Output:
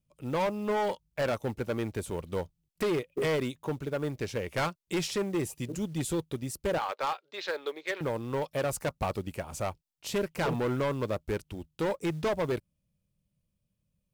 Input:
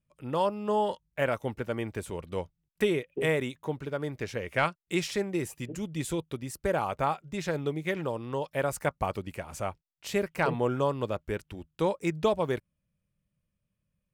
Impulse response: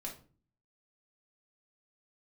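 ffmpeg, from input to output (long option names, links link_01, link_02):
-filter_complex "[0:a]acrossover=split=2100[link_01][link_02];[link_01]adynamicsmooth=sensitivity=7:basefreq=1200[link_03];[link_03][link_02]amix=inputs=2:normalize=0,asettb=1/sr,asplit=3[link_04][link_05][link_06];[link_04]atrim=end=6.784[link_07];[link_05]atrim=start=6.78:end=8.01,asetpts=PTS-STARTPTS,afade=type=in:duration=0.004:curve=qsin,afade=type=out:start_time=1.226:duration=0.004:curve=qsin,highpass=frequency=460:width=0.5412,highpass=frequency=460:width=1.3066,equalizer=frequency=690:width_type=q:width=4:gain=-7,equalizer=frequency=1600:width_type=q:width=4:gain=4,equalizer=frequency=4100:width_type=q:width=4:gain=8,lowpass=frequency=4800:width=0.5412,lowpass=frequency=4800:width=1.3066[link_08];[link_06]atrim=start=8.006[link_09];[link_07][link_08]acrossfade=duration=0.004:curve1=hsin:curve2=qsin[link_10];[link_10][link_09]acrossfade=duration=0.004:curve1=qsin:curve2=hsin,acrusher=bits=7:mode=log:mix=0:aa=0.000001,volume=27dB,asoftclip=hard,volume=-27dB,volume=2dB"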